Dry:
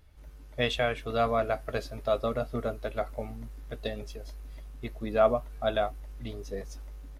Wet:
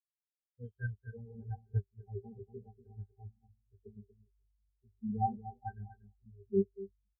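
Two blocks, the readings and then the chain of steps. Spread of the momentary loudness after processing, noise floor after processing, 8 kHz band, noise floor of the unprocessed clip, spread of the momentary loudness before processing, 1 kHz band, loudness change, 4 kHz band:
22 LU, under -85 dBFS, n/a, -48 dBFS, 18 LU, -8.5 dB, -9.0 dB, under -40 dB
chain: added harmonics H 4 -18 dB, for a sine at -11 dBFS; bit-crush 7-bit; octave resonator G, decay 0.2 s; on a send: echo 0.239 s -3.5 dB; on the sum: spectral expander 4:1; gain +11.5 dB

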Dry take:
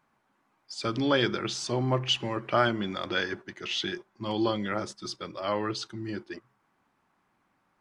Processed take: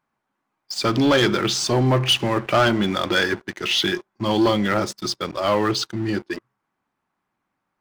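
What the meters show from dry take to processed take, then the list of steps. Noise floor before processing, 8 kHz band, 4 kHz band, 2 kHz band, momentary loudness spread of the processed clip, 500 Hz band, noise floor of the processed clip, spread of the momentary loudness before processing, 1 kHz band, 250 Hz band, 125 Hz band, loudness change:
-73 dBFS, +11.0 dB, +9.0 dB, +9.0 dB, 9 LU, +8.5 dB, -79 dBFS, 11 LU, +8.0 dB, +9.5 dB, +9.5 dB, +9.0 dB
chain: sample leveller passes 3

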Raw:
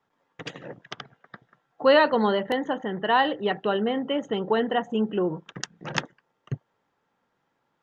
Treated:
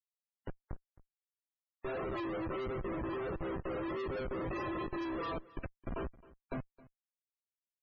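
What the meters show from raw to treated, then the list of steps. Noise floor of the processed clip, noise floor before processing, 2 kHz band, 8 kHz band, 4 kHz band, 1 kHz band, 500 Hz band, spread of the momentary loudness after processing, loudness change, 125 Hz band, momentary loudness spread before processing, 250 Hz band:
under -85 dBFS, -75 dBFS, -16.5 dB, n/a, -22.5 dB, -16.5 dB, -14.5 dB, 14 LU, -15.0 dB, -7.5 dB, 21 LU, -11.5 dB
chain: FFT order left unsorted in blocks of 64 samples; mistuned SSB +120 Hz 210–2400 Hz; dynamic EQ 930 Hz, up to +4 dB, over -52 dBFS, Q 3.6; resonator bank C4 major, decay 0.32 s; in parallel at -11.5 dB: sine folder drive 5 dB, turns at -34.5 dBFS; on the sum: air absorption 89 m; Schmitt trigger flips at -51 dBFS; echo 0.266 s -21 dB; loudest bins only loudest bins 64; gain +12 dB

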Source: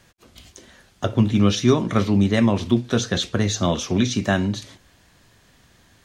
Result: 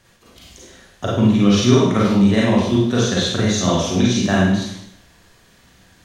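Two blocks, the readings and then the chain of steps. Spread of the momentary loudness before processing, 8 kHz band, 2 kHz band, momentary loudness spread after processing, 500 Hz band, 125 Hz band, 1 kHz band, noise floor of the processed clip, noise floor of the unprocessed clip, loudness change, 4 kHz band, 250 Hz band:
6 LU, +4.0 dB, +4.0 dB, 5 LU, +4.5 dB, +3.0 dB, +4.0 dB, -53 dBFS, -57 dBFS, +4.0 dB, +4.5 dB, +4.5 dB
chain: Schroeder reverb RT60 0.72 s, combs from 33 ms, DRR -5 dB; gain -2 dB

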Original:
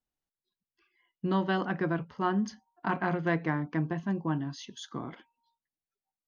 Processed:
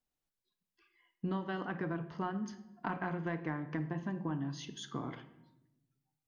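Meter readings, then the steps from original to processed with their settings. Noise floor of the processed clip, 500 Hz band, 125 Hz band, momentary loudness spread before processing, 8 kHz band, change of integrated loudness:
under -85 dBFS, -8.0 dB, -6.0 dB, 11 LU, n/a, -7.5 dB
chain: dynamic EQ 4600 Hz, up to -5 dB, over -57 dBFS, Q 1.7; compressor, threshold -34 dBFS, peak gain reduction 11 dB; shoebox room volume 340 m³, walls mixed, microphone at 0.38 m

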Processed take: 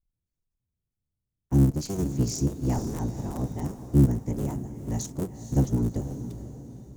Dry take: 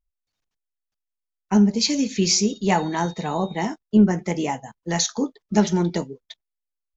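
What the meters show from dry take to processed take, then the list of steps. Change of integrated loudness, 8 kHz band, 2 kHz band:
-5.5 dB, n/a, under -15 dB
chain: cycle switcher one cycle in 3, inverted; EQ curve 130 Hz 0 dB, 2400 Hz -25 dB, 4400 Hz -22 dB, 7900 Hz -8 dB; diffused feedback echo 0.47 s, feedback 43%, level -11 dB

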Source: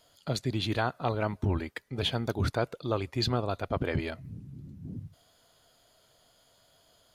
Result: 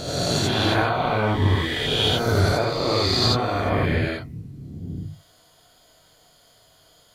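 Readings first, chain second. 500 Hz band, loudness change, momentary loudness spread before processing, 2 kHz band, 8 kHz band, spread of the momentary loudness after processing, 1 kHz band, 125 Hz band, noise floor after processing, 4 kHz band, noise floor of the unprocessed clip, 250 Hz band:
+9.0 dB, +10.5 dB, 15 LU, +11.5 dB, +14.5 dB, 16 LU, +10.5 dB, +9.0 dB, -57 dBFS, +13.0 dB, -66 dBFS, +8.0 dB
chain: spectral swells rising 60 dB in 2.16 s; non-linear reverb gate 0.11 s rising, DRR -3 dB

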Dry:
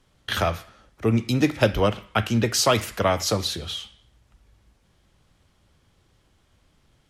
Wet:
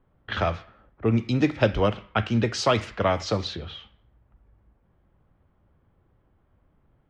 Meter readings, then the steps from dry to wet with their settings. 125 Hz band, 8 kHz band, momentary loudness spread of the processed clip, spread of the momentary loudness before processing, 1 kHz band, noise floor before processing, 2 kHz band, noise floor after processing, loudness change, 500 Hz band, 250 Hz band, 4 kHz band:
-1.0 dB, -11.5 dB, 13 LU, 10 LU, -1.5 dB, -64 dBFS, -2.5 dB, -66 dBFS, -2.0 dB, -1.5 dB, -1.0 dB, -5.5 dB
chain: low-pass opened by the level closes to 1300 Hz, open at -17 dBFS; air absorption 130 m; gain -1 dB

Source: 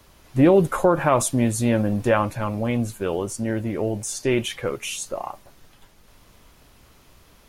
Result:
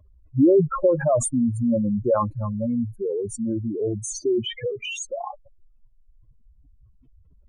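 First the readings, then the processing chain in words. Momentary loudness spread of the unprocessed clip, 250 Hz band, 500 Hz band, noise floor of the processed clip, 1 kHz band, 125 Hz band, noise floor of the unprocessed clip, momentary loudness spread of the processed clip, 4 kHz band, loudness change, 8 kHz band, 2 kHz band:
12 LU, -0.5 dB, -0.5 dB, -56 dBFS, -5.0 dB, -3.0 dB, -54 dBFS, 12 LU, -1.5 dB, -1.0 dB, -2.5 dB, -8.5 dB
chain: spectral contrast raised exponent 4

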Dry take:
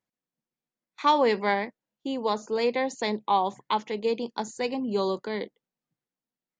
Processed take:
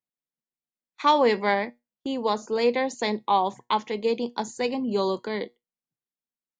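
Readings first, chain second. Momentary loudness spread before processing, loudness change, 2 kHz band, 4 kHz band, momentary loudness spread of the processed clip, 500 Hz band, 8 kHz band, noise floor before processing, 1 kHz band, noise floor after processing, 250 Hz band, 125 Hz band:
11 LU, +2.0 dB, +2.0 dB, +2.0 dB, 11 LU, +2.0 dB, +2.0 dB, under -85 dBFS, +1.5 dB, under -85 dBFS, +2.0 dB, n/a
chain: gate -46 dBFS, range -12 dB; resonator 120 Hz, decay 0.2 s, harmonics all, mix 40%; gain +5 dB

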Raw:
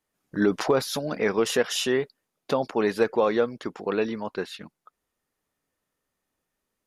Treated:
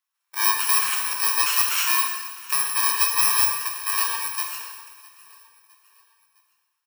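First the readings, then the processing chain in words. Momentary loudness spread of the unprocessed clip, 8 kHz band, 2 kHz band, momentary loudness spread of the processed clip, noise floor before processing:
11 LU, +15.0 dB, +6.0 dB, 12 LU, -82 dBFS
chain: FFT order left unsorted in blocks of 64 samples; HPF 990 Hz 24 dB/oct; high shelf 2800 Hz -9 dB; sample leveller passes 1; on a send: feedback echo 0.659 s, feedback 47%, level -22 dB; on the sum: plate-style reverb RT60 1.4 s, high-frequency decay 0.9×, DRR 0 dB; gain +6 dB

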